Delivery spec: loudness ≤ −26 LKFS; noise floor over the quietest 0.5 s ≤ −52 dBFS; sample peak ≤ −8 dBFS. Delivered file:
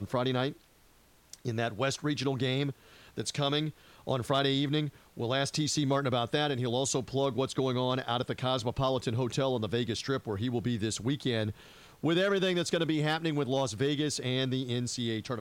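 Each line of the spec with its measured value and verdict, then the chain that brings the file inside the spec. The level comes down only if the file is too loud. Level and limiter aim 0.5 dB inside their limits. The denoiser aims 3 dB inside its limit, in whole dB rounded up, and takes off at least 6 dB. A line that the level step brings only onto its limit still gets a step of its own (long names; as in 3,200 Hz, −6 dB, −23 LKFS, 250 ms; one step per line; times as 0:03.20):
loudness −31.0 LKFS: in spec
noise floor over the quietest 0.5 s −62 dBFS: in spec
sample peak −15.0 dBFS: in spec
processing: no processing needed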